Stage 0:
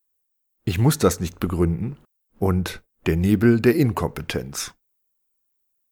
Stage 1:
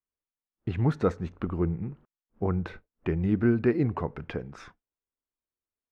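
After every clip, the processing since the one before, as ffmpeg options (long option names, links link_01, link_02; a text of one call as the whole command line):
ffmpeg -i in.wav -af "lowpass=1900,volume=-7dB" out.wav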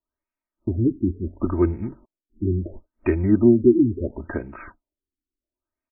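ffmpeg -i in.wav -af "aecho=1:1:3.2:0.92,afftfilt=real='re*lt(b*sr/1024,380*pow(2800/380,0.5+0.5*sin(2*PI*0.72*pts/sr)))':imag='im*lt(b*sr/1024,380*pow(2800/380,0.5+0.5*sin(2*PI*0.72*pts/sr)))':win_size=1024:overlap=0.75,volume=5.5dB" out.wav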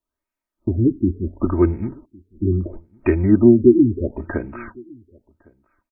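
ffmpeg -i in.wav -filter_complex "[0:a]asplit=2[link_01][link_02];[link_02]adelay=1108,volume=-27dB,highshelf=frequency=4000:gain=-24.9[link_03];[link_01][link_03]amix=inputs=2:normalize=0,volume=3.5dB" out.wav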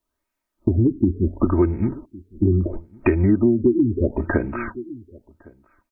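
ffmpeg -i in.wav -af "acompressor=threshold=-20dB:ratio=6,volume=6dB" out.wav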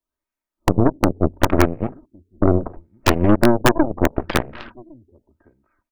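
ffmpeg -i in.wav -filter_complex "[0:a]acrossover=split=130[link_01][link_02];[link_02]aeval=exprs='(mod(2.66*val(0)+1,2)-1)/2.66':channel_layout=same[link_03];[link_01][link_03]amix=inputs=2:normalize=0,aeval=exprs='0.501*(cos(1*acos(clip(val(0)/0.501,-1,1)))-cos(1*PI/2))+0.141*(cos(4*acos(clip(val(0)/0.501,-1,1)))-cos(4*PI/2))+0.1*(cos(7*acos(clip(val(0)/0.501,-1,1)))-cos(7*PI/2))':channel_layout=same" out.wav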